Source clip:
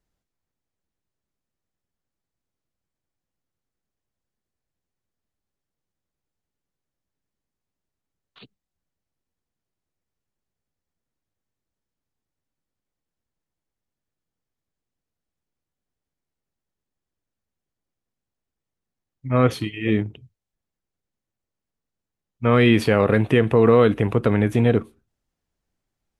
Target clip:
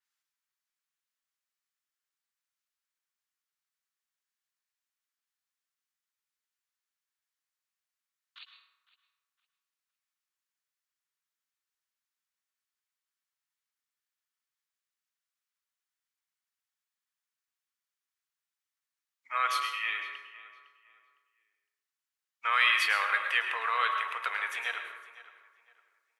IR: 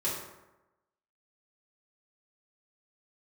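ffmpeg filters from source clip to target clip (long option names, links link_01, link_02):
-filter_complex "[0:a]highpass=frequency=1200:width=0.5412,highpass=frequency=1200:width=1.3066,asplit=2[link_01][link_02];[link_02]adelay=508,lowpass=frequency=2600:poles=1,volume=-16.5dB,asplit=2[link_03][link_04];[link_04]adelay=508,lowpass=frequency=2600:poles=1,volume=0.31,asplit=2[link_05][link_06];[link_06]adelay=508,lowpass=frequency=2600:poles=1,volume=0.31[link_07];[link_01][link_03][link_05][link_07]amix=inputs=4:normalize=0,asplit=2[link_08][link_09];[1:a]atrim=start_sample=2205,adelay=103[link_10];[link_09][link_10]afir=irnorm=-1:irlink=0,volume=-11.5dB[link_11];[link_08][link_11]amix=inputs=2:normalize=0,adynamicequalizer=threshold=0.00631:dfrequency=4800:dqfactor=0.7:tfrequency=4800:tqfactor=0.7:attack=5:release=100:ratio=0.375:range=3:mode=cutabove:tftype=highshelf"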